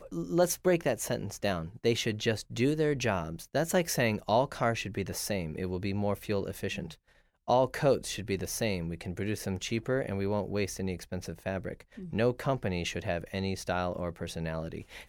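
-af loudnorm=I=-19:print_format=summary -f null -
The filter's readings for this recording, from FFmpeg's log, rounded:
Input Integrated:    -31.8 LUFS
Input True Peak:     -13.9 dBTP
Input LRA:             3.4 LU
Input Threshold:     -42.0 LUFS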